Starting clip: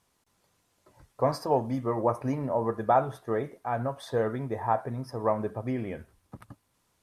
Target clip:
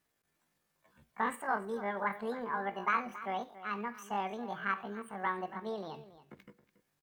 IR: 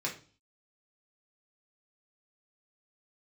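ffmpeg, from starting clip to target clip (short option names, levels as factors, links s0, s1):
-filter_complex "[0:a]asplit=2[s0][s1];[s1]adelay=279.9,volume=0.178,highshelf=f=4000:g=-6.3[s2];[s0][s2]amix=inputs=2:normalize=0,asetrate=76340,aresample=44100,atempo=0.577676,asplit=2[s3][s4];[1:a]atrim=start_sample=2205[s5];[s4][s5]afir=irnorm=-1:irlink=0,volume=0.133[s6];[s3][s6]amix=inputs=2:normalize=0,volume=0.376"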